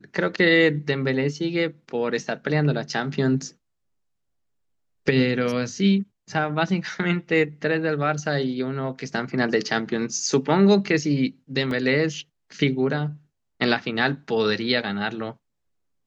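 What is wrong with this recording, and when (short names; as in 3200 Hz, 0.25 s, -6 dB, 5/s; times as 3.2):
11.71 gap 2 ms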